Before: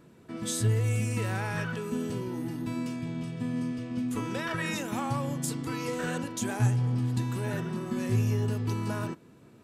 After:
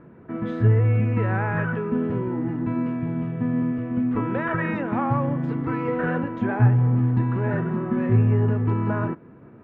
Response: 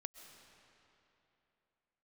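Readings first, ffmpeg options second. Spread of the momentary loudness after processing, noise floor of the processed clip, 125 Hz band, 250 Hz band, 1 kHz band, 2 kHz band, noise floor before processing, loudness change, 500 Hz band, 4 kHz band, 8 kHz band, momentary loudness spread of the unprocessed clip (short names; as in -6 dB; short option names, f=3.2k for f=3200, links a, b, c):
7 LU, -47 dBFS, +8.0 dB, +8.0 dB, +8.0 dB, +5.5 dB, -55 dBFS, +7.5 dB, +8.0 dB, under -10 dB, under -35 dB, 7 LU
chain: -af "lowpass=f=1.9k:w=0.5412,lowpass=f=1.9k:w=1.3066,volume=8dB"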